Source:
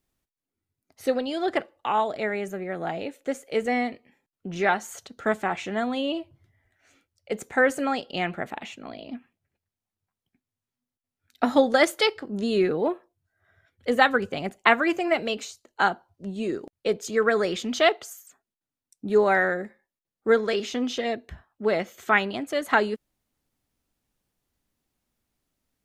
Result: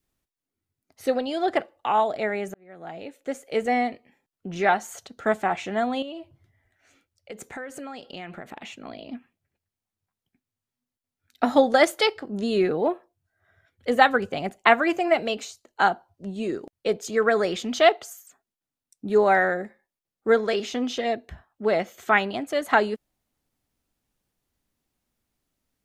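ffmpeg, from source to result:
-filter_complex "[0:a]asettb=1/sr,asplit=3[a][b][c];[a]atrim=end=6.024[d];[b]atrim=start=6.02:end=8.81,asetpts=PTS-STARTPTS,afade=t=in:d=0.004:c=qsin,afade=t=out:st=2.786:d=0.004:c=qsin,acompressor=threshold=-34dB:ratio=6:attack=3.2:release=140:knee=1:detection=peak[e];[c]atrim=start=8.806[f];[d][e]acrossfade=d=0.004:c1=hsin:c2=qsin[g];[g][f]acrossfade=d=0.004:c1=qsin:c2=hsin,asplit=2[h][i];[h]atrim=end=2.54,asetpts=PTS-STARTPTS,afade=t=out:st=2.536:d=0.004:c=hsin[j];[i]atrim=start=2.54,asetpts=PTS-STARTPTS,afade=t=in:d=0.96[k];[j][k]concat=n=2:v=0:a=1,adynamicequalizer=threshold=0.0158:dfrequency=720:dqfactor=2.9:tfrequency=720:tqfactor=2.9:attack=5:release=100:ratio=0.375:range=2.5:mode=boostabove:tftype=bell"

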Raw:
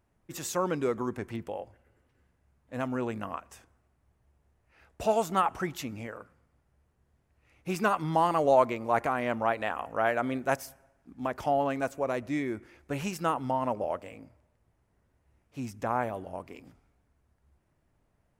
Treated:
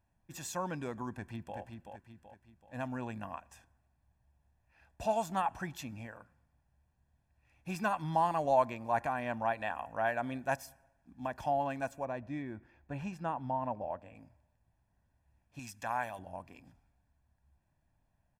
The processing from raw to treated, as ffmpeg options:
-filter_complex "[0:a]asplit=2[a][b];[b]afade=t=in:st=1.11:d=0.01,afade=t=out:st=1.58:d=0.01,aecho=0:1:380|760|1140|1520|1900:0.530884|0.238898|0.107504|0.0483768|0.0217696[c];[a][c]amix=inputs=2:normalize=0,asettb=1/sr,asplit=3[d][e][f];[d]atrim=end=12.054[g];[e]atrim=start=12.05:end=14.15,asetpts=PTS-STARTPTS,afade=t=in:d=0.004:c=qsin,afade=t=out:st=2.096:d=0.004:c=qsin,lowpass=f=1.5k:p=1[h];[f]atrim=start=14.146[i];[g][h]acrossfade=d=0.004:c1=hsin:c2=qsin[j];[j][i]acrossfade=d=0.004:c1=qsin:c2=hsin,asettb=1/sr,asplit=3[k][l][m];[k]atrim=end=15.594[n];[l]atrim=start=15.59:end=16.19,asetpts=PTS-STARTPTS,afade=t=in:d=0.004:c=qsin,afade=t=out:st=0.596:d=0.004:c=qsin,tiltshelf=f=920:g=-8[o];[m]atrim=start=16.186[p];[n][o]acrossfade=d=0.004:c1=hsin:c2=qsin[q];[q][p]acrossfade=d=0.004:c1=qsin:c2=hsin,highshelf=f=12k:g=-3.5,aecho=1:1:1.2:0.62,volume=-7dB"

